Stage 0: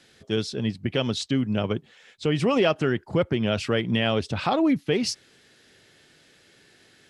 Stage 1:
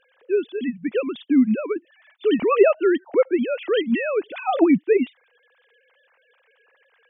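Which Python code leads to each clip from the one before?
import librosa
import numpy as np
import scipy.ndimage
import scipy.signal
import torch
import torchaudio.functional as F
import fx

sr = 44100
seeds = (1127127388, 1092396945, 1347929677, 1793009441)

y = fx.sine_speech(x, sr)
y = y * 10.0 ** (4.0 / 20.0)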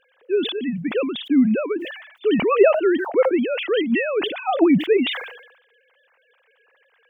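y = fx.sustainer(x, sr, db_per_s=70.0)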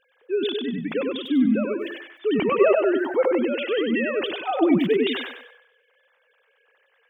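y = fx.echo_feedback(x, sr, ms=97, feedback_pct=31, wet_db=-4.0)
y = y * 10.0 ** (-4.0 / 20.0)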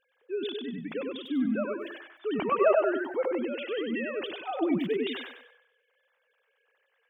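y = fx.spec_box(x, sr, start_s=1.35, length_s=1.67, low_hz=570.0, high_hz=1700.0, gain_db=7)
y = y * 10.0 ** (-8.5 / 20.0)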